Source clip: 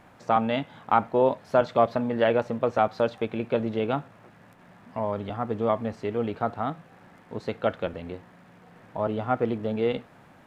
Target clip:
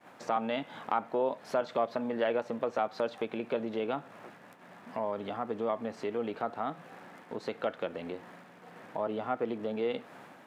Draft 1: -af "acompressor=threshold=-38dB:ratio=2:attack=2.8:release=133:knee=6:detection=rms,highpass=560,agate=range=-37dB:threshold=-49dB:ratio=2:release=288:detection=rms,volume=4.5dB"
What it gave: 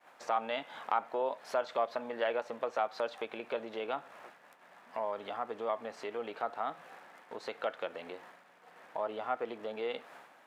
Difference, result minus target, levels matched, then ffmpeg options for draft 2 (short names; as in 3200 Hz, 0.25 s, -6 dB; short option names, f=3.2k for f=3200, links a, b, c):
250 Hz band -8.0 dB
-af "acompressor=threshold=-38dB:ratio=2:attack=2.8:release=133:knee=6:detection=rms,highpass=240,agate=range=-37dB:threshold=-49dB:ratio=2:release=288:detection=rms,volume=4.5dB"